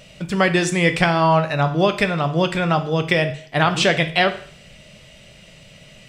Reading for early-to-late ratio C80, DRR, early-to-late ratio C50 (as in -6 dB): 16.5 dB, 7.5 dB, 12.5 dB